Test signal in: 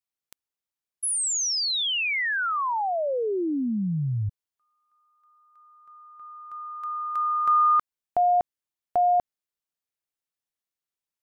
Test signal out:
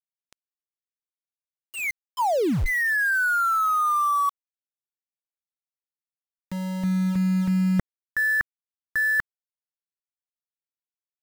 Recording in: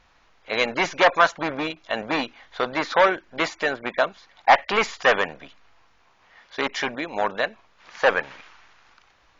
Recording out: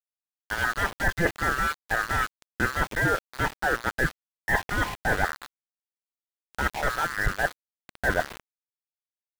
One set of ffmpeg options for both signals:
-af "afftfilt=real='real(if(lt(b,960),b+48*(1-2*mod(floor(b/48),2)),b),0)':imag='imag(if(lt(b,960),b+48*(1-2*mod(floor(b/48),2)),b),0)':win_size=2048:overlap=0.75,lowshelf=f=88:g=11,areverse,acompressor=threshold=-26dB:ratio=12:attack=7.8:release=223:knee=1:detection=peak,areverse,lowpass=f=2.1k:w=0.5412,lowpass=f=2.1k:w=1.3066,aeval=exprs='val(0)*gte(abs(val(0)),0.0141)':c=same,volume=6.5dB"

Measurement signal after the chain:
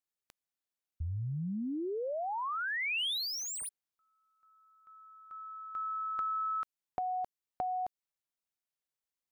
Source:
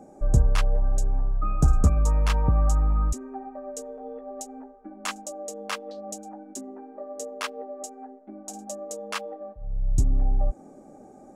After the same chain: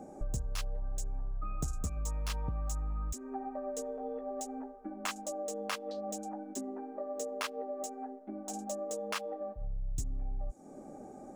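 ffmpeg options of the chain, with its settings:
-filter_complex "[0:a]acrossover=split=3300[a][b];[a]acompressor=threshold=-34dB:ratio=6[c];[b]asoftclip=type=hard:threshold=-39dB[d];[c][d]amix=inputs=2:normalize=0"

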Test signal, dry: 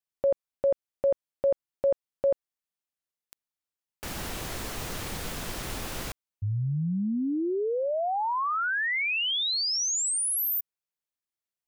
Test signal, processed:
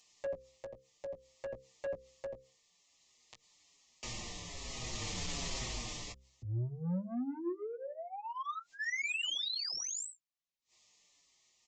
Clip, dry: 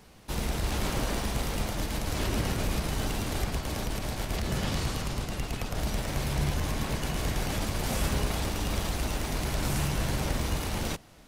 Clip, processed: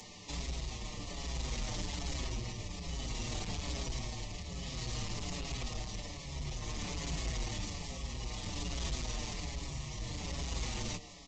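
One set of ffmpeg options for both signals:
-filter_complex "[0:a]acrossover=split=100|4800[a][b][c];[c]alimiter=level_in=8dB:limit=-24dB:level=0:latency=1,volume=-8dB[d];[a][b][d]amix=inputs=3:normalize=0,asuperstop=centerf=1500:order=12:qfactor=3.1,acrossover=split=180[e][f];[f]acompressor=threshold=-52dB:ratio=1.5:attack=31:release=45:knee=2.83:detection=peak[g];[e][g]amix=inputs=2:normalize=0,tremolo=f=0.56:d=0.69,highshelf=f=5.2k:g=6.5,asplit=2[h][i];[i]adelay=17,volume=-8dB[j];[h][j]amix=inputs=2:normalize=0,acompressor=mode=upward:threshold=-48dB:ratio=2.5:attack=3.4:release=77:knee=2.83:detection=peak,highshelf=f=2.5k:g=6.5,aresample=16000,asoftclip=type=tanh:threshold=-34.5dB,aresample=44100,bandreject=f=65.7:t=h:w=4,bandreject=f=131.4:t=h:w=4,bandreject=f=197.1:t=h:w=4,bandreject=f=262.8:t=h:w=4,bandreject=f=328.5:t=h:w=4,bandreject=f=394.2:t=h:w=4,bandreject=f=459.9:t=h:w=4,bandreject=f=525.6:t=h:w=4,asplit=2[k][l];[l]adelay=6.1,afreqshift=-1.2[m];[k][m]amix=inputs=2:normalize=1,volume=3.5dB"

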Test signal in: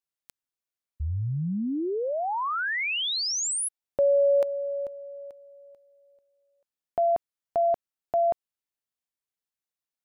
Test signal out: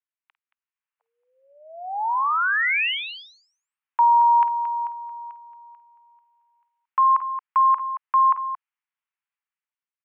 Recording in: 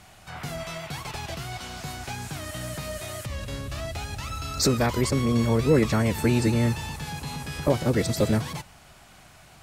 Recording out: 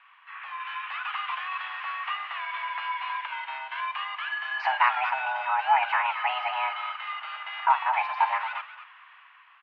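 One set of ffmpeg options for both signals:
-af "dynaudnorm=f=170:g=9:m=8dB,aecho=1:1:51|225:0.178|0.266,highpass=f=490:t=q:w=0.5412,highpass=f=490:t=q:w=1.307,lowpass=f=2.5k:t=q:w=0.5176,lowpass=f=2.5k:t=q:w=0.7071,lowpass=f=2.5k:t=q:w=1.932,afreqshift=380,volume=-1.5dB"

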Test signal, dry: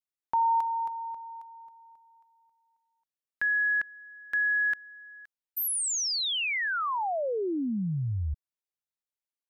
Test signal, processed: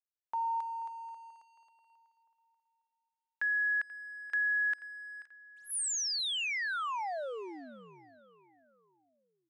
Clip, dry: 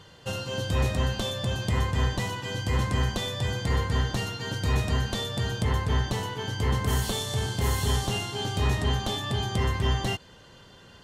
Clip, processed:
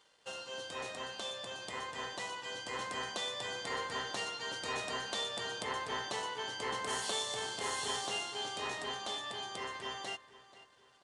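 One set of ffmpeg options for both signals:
-filter_complex "[0:a]highpass=500,dynaudnorm=f=260:g=21:m=4.5dB,aeval=exprs='sgn(val(0))*max(abs(val(0))-0.00141,0)':c=same,asplit=2[a][b];[b]adelay=485,lowpass=f=4.5k:p=1,volume=-16.5dB,asplit=2[c][d];[d]adelay=485,lowpass=f=4.5k:p=1,volume=0.42,asplit=2[e][f];[f]adelay=485,lowpass=f=4.5k:p=1,volume=0.42,asplit=2[g][h];[h]adelay=485,lowpass=f=4.5k:p=1,volume=0.42[i];[c][e][g][i]amix=inputs=4:normalize=0[j];[a][j]amix=inputs=2:normalize=0,aresample=22050,aresample=44100,volume=-8dB"

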